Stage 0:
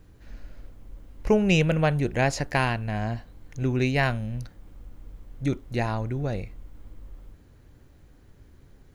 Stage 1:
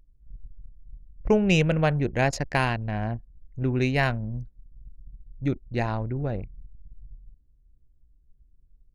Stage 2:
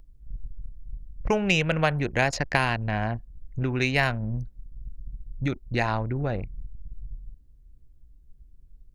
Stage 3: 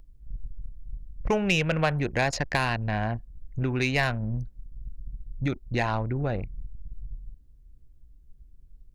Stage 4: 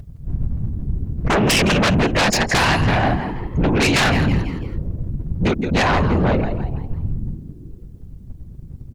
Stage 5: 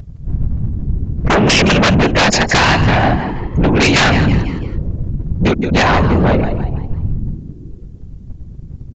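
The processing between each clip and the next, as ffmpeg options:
ffmpeg -i in.wav -af "anlmdn=15.8" out.wav
ffmpeg -i in.wav -filter_complex "[0:a]acrossover=split=790|5800[link_01][link_02][link_03];[link_01]acompressor=threshold=-33dB:ratio=4[link_04];[link_02]acompressor=threshold=-28dB:ratio=4[link_05];[link_03]acompressor=threshold=-50dB:ratio=4[link_06];[link_04][link_05][link_06]amix=inputs=3:normalize=0,volume=7dB" out.wav
ffmpeg -i in.wav -af "asoftclip=type=tanh:threshold=-13dB" out.wav
ffmpeg -i in.wav -filter_complex "[0:a]asplit=5[link_01][link_02][link_03][link_04][link_05];[link_02]adelay=166,afreqshift=89,volume=-12dB[link_06];[link_03]adelay=332,afreqshift=178,volume=-20.2dB[link_07];[link_04]adelay=498,afreqshift=267,volume=-28.4dB[link_08];[link_05]adelay=664,afreqshift=356,volume=-36.5dB[link_09];[link_01][link_06][link_07][link_08][link_09]amix=inputs=5:normalize=0,afftfilt=real='hypot(re,im)*cos(2*PI*random(0))':imag='hypot(re,im)*sin(2*PI*random(1))':win_size=512:overlap=0.75,aeval=exprs='0.141*sin(PI/2*3.98*val(0)/0.141)':channel_layout=same,volume=4.5dB" out.wav
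ffmpeg -i in.wav -af "aresample=16000,aresample=44100,volume=5dB" out.wav

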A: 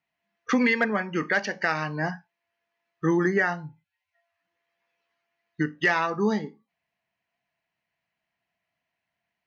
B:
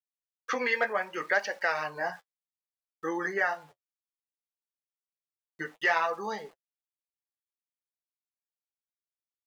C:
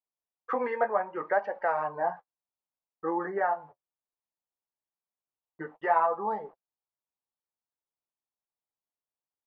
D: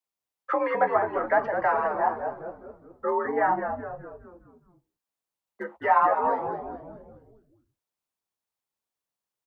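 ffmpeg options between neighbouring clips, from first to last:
ffmpeg -i in.wav -af "aeval=exprs='val(0)*gte(abs(val(0)),0.00398)':channel_layout=same,lowshelf=frequency=360:width_type=q:width=1.5:gain=-14,flanger=delay=3.5:depth=9.2:regen=-31:speed=0.64:shape=sinusoidal" out.wav
ffmpeg -i in.wav -af "lowpass=frequency=920:width_type=q:width=2" out.wav
ffmpeg -i in.wav -filter_complex "[0:a]afreqshift=52,acrossover=split=140|420|830[link_01][link_02][link_03][link_04];[link_01]aeval=exprs='(mod(794*val(0)+1,2)-1)/794':channel_layout=same[link_05];[link_05][link_02][link_03][link_04]amix=inputs=4:normalize=0,asplit=7[link_06][link_07][link_08][link_09][link_10][link_11][link_12];[link_07]adelay=208,afreqshift=-100,volume=-7.5dB[link_13];[link_08]adelay=416,afreqshift=-200,volume=-13.7dB[link_14];[link_09]adelay=624,afreqshift=-300,volume=-19.9dB[link_15];[link_10]adelay=832,afreqshift=-400,volume=-26.1dB[link_16];[link_11]adelay=1040,afreqshift=-500,volume=-32.3dB[link_17];[link_12]adelay=1248,afreqshift=-600,volume=-38.5dB[link_18];[link_06][link_13][link_14][link_15][link_16][link_17][link_18]amix=inputs=7:normalize=0,volume=4dB" out.wav

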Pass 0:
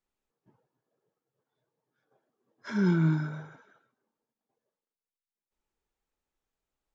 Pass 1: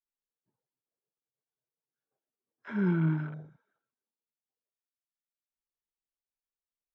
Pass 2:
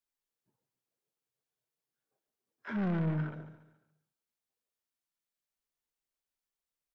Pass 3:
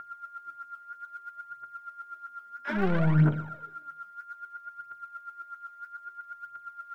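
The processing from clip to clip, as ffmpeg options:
ffmpeg -i in.wav -af "lowpass=5200,afwtdn=0.00794,volume=-2.5dB" out.wav
ffmpeg -i in.wav -filter_complex "[0:a]asoftclip=type=tanh:threshold=-31.5dB,asplit=2[link_01][link_02];[link_02]aecho=0:1:141|282|423|564:0.237|0.0949|0.0379|0.0152[link_03];[link_01][link_03]amix=inputs=2:normalize=0,volume=2.5dB" out.wav
ffmpeg -i in.wav -af "aeval=exprs='val(0)+0.00316*sin(2*PI*1400*n/s)':channel_layout=same,aphaser=in_gain=1:out_gain=1:delay=4.8:decay=0.7:speed=0.61:type=triangular,volume=6.5dB" out.wav

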